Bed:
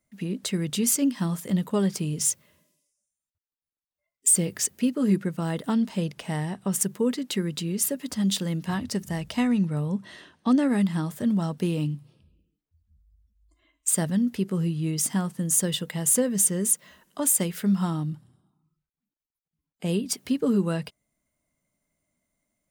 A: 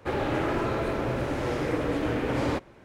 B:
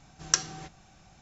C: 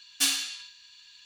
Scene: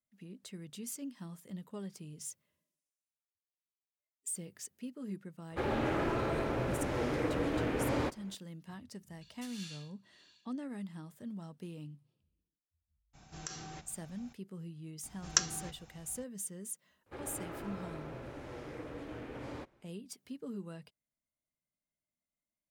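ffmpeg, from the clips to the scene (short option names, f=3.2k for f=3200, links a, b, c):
-filter_complex "[1:a]asplit=2[a][b];[2:a]asplit=2[c][d];[0:a]volume=-19.5dB[e];[3:a]tremolo=f=1.9:d=0.9[f];[c]acompressor=threshold=-41dB:ratio=4:attack=4.8:release=36:knee=1:detection=peak[g];[d]equalizer=f=60:t=o:w=0.77:g=6[h];[a]atrim=end=2.84,asetpts=PTS-STARTPTS,volume=-5.5dB,afade=t=in:d=0.004:c=hsin,afade=t=out:st=2.836:d=0.004:c=hsin,adelay=5510[i];[f]atrim=end=1.25,asetpts=PTS-STARTPTS,volume=-10.5dB,afade=t=in:d=0.004:c=hsin,afade=t=out:st=1.246:d=0.004:c=hsin,adelay=9210[j];[g]atrim=end=1.21,asetpts=PTS-STARTPTS,volume=-3dB,afade=t=in:d=0.02,afade=t=out:st=1.19:d=0.02,adelay=13130[k];[h]atrim=end=1.21,asetpts=PTS-STARTPTS,volume=-3.5dB,afade=t=in:d=0.004:c=hsin,afade=t=out:st=1.206:d=0.004:c=hsin,adelay=15030[l];[b]atrim=end=2.84,asetpts=PTS-STARTPTS,volume=-17dB,afade=t=in:d=0.004:c=hsin,afade=t=out:st=2.836:d=0.004:c=hsin,adelay=17060[m];[e][i][j][k][l][m]amix=inputs=6:normalize=0"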